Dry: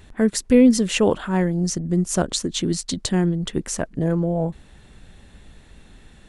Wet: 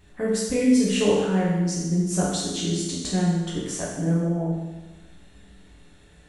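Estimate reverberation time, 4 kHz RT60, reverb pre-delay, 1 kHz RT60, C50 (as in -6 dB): 1.2 s, 1.1 s, 7 ms, 1.2 s, 0.5 dB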